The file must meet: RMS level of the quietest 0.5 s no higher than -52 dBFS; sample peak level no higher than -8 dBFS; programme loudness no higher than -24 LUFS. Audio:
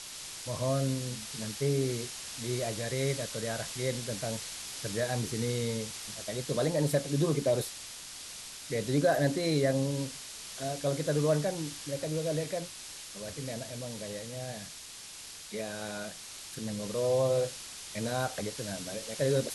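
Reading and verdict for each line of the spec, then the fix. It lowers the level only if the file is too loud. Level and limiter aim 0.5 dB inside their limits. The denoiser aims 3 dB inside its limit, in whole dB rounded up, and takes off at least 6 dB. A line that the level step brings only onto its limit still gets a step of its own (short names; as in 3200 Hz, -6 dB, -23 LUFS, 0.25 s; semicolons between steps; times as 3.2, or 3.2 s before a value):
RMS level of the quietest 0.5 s -46 dBFS: fail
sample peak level -15.0 dBFS: OK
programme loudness -33.0 LUFS: OK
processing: denoiser 9 dB, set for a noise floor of -46 dBFS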